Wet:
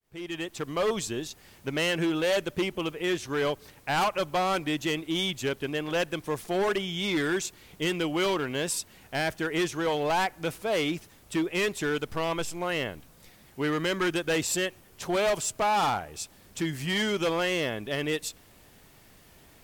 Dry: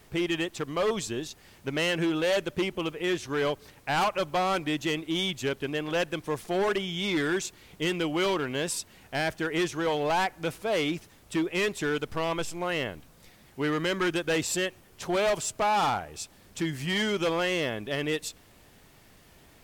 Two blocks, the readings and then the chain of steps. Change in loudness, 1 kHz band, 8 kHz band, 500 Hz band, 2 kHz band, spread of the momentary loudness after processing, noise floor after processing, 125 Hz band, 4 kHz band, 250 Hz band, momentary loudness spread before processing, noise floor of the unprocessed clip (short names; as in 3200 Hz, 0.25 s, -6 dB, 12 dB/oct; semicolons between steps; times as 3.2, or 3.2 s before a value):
0.0 dB, 0.0 dB, +1.5 dB, 0.0 dB, 0.0 dB, 8 LU, -56 dBFS, 0.0 dB, +0.5 dB, 0.0 dB, 8 LU, -57 dBFS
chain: opening faded in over 0.69 s; high shelf 10000 Hz +5 dB